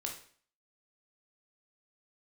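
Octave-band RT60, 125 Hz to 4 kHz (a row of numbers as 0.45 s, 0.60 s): 0.50 s, 0.50 s, 0.50 s, 0.50 s, 0.50 s, 0.45 s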